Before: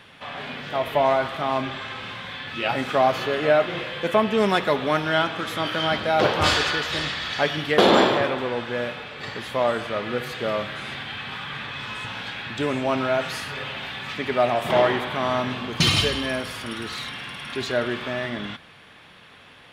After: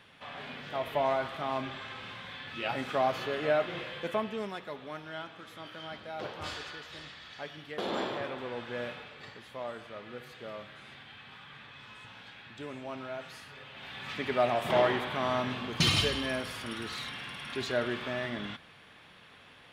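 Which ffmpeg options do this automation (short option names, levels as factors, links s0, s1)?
-af "volume=3.98,afade=t=out:st=3.92:d=0.61:silence=0.298538,afade=t=in:st=7.81:d=1.11:silence=0.298538,afade=t=out:st=8.92:d=0.47:silence=0.398107,afade=t=in:st=13.71:d=0.45:silence=0.298538"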